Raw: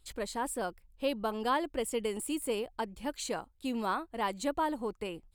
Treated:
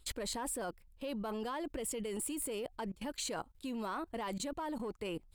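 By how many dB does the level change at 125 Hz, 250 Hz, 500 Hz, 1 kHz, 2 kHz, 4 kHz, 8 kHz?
+0.5 dB, -4.0 dB, -6.0 dB, -8.0 dB, -7.0 dB, -3.0 dB, +1.0 dB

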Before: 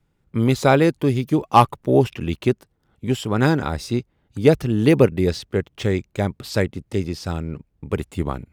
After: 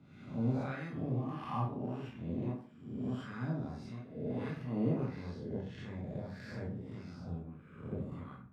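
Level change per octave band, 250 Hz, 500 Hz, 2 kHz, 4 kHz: -16.5 dB, -23.0 dB, -21.5 dB, -26.0 dB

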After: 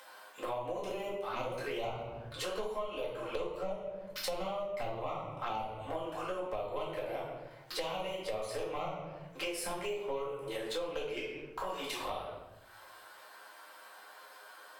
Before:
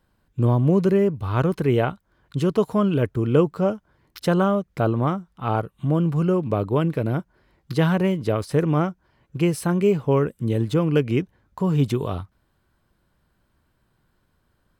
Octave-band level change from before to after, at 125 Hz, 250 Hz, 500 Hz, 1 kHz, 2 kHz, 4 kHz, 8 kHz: -28.5 dB, -25.0 dB, -13.5 dB, -9.5 dB, -9.0 dB, -3.0 dB, -4.0 dB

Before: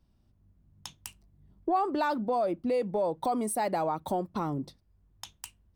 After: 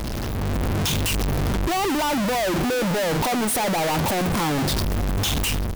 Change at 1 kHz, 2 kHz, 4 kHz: +5.5 dB, +15.5 dB, +21.5 dB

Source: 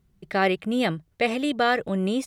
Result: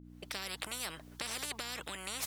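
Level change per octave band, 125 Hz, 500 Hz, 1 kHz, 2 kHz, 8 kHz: -20.0 dB, -24.0 dB, -20.0 dB, -15.0 dB, +5.0 dB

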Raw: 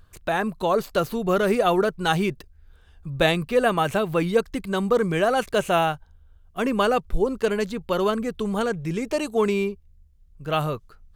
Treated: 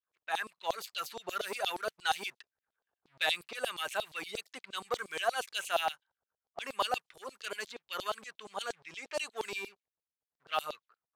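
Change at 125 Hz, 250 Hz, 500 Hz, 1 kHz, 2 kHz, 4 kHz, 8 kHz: -32.5 dB, -28.5 dB, -17.5 dB, -10.5 dB, -8.5 dB, -4.5 dB, -5.0 dB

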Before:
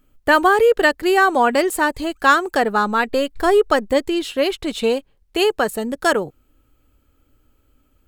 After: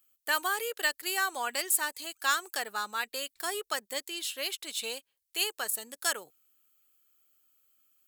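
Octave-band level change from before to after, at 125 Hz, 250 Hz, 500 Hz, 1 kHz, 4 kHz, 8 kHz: no reading, -27.0 dB, -23.0 dB, -17.0 dB, -6.0 dB, +1.0 dB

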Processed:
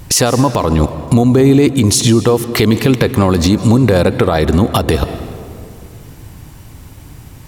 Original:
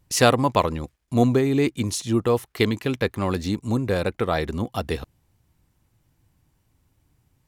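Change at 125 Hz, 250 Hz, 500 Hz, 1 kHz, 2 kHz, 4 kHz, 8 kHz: +13.0 dB, +12.0 dB, +9.5 dB, +7.0 dB, +7.0 dB, +11.0 dB, +14.0 dB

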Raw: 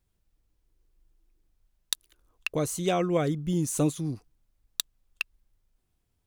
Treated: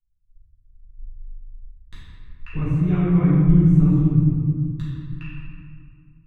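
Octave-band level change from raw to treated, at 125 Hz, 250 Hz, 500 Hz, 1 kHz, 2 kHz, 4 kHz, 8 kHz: +16.0 dB, +12.0 dB, -3.0 dB, -4.0 dB, no reading, under -15 dB, under -25 dB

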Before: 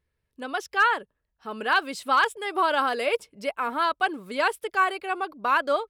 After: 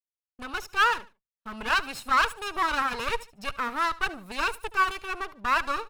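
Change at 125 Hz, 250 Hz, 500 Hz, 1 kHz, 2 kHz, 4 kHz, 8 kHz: no reading, -4.5 dB, -9.0 dB, -2.5 dB, -1.5 dB, 0.0 dB, +2.0 dB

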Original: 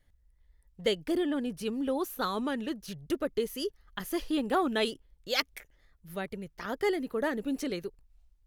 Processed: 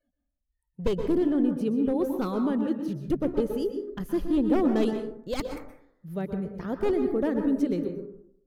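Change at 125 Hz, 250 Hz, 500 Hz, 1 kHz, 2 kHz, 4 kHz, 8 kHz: +10.0 dB, +8.0 dB, +4.5 dB, -2.0 dB, -7.0 dB, -10.0 dB, no reading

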